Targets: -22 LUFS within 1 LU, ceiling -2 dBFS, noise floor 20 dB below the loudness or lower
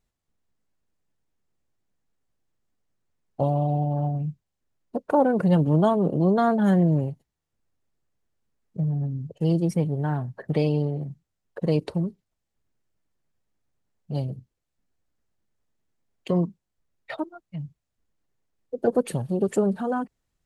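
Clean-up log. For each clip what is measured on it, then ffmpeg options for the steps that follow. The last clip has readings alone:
loudness -25.0 LUFS; peak level -9.0 dBFS; loudness target -22.0 LUFS
-> -af "volume=1.41"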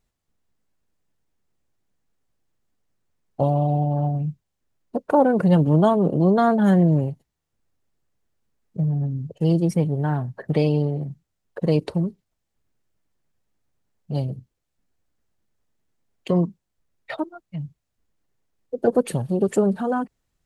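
loudness -22.0 LUFS; peak level -6.0 dBFS; noise floor -79 dBFS

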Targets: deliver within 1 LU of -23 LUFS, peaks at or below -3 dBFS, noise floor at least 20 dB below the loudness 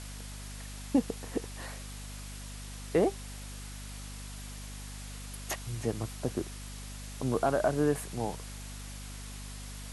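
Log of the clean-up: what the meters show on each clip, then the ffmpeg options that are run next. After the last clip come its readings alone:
hum 50 Hz; highest harmonic 250 Hz; hum level -41 dBFS; noise floor -43 dBFS; noise floor target -56 dBFS; loudness -35.5 LUFS; peak level -14.5 dBFS; loudness target -23.0 LUFS
-> -af "bandreject=f=50:t=h:w=6,bandreject=f=100:t=h:w=6,bandreject=f=150:t=h:w=6,bandreject=f=200:t=h:w=6,bandreject=f=250:t=h:w=6"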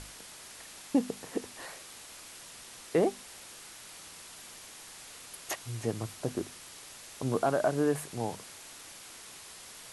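hum not found; noise floor -49 dBFS; noise floor target -56 dBFS
-> -af "afftdn=nr=7:nf=-49"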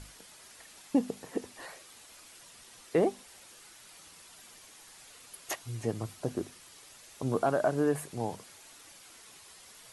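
noise floor -54 dBFS; loudness -33.0 LUFS; peak level -15.0 dBFS; loudness target -23.0 LUFS
-> -af "volume=3.16"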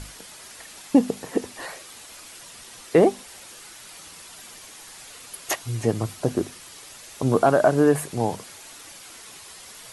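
loudness -23.0 LUFS; peak level -5.0 dBFS; noise floor -44 dBFS

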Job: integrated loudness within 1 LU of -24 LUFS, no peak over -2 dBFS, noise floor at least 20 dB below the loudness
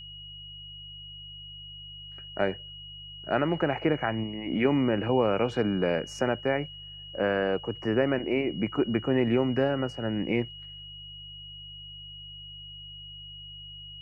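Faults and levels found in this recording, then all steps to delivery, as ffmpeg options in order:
hum 50 Hz; highest harmonic 150 Hz; hum level -48 dBFS; steady tone 2.9 kHz; tone level -42 dBFS; loudness -28.0 LUFS; peak level -11.5 dBFS; loudness target -24.0 LUFS
-> -af "bandreject=f=50:t=h:w=4,bandreject=f=100:t=h:w=4,bandreject=f=150:t=h:w=4"
-af "bandreject=f=2900:w=30"
-af "volume=1.58"

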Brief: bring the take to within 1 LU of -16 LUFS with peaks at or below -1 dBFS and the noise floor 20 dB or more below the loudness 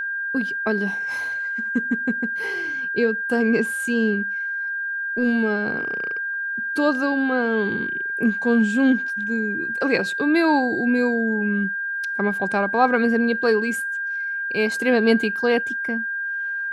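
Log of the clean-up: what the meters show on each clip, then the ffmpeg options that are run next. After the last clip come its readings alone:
steady tone 1.6 kHz; tone level -24 dBFS; loudness -22.0 LUFS; peak level -4.5 dBFS; loudness target -16.0 LUFS
-> -af "bandreject=f=1600:w=30"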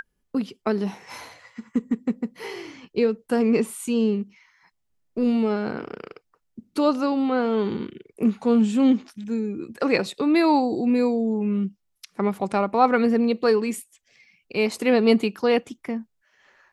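steady tone not found; loudness -23.5 LUFS; peak level -5.0 dBFS; loudness target -16.0 LUFS
-> -af "volume=2.37,alimiter=limit=0.891:level=0:latency=1"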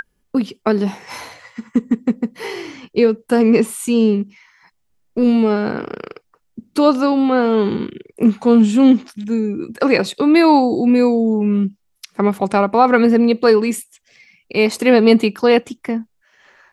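loudness -16.0 LUFS; peak level -1.0 dBFS; noise floor -66 dBFS

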